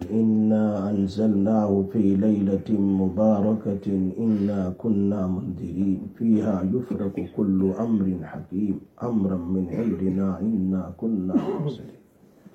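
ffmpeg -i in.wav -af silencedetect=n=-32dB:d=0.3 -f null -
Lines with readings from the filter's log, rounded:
silence_start: 11.89
silence_end: 12.54 | silence_duration: 0.65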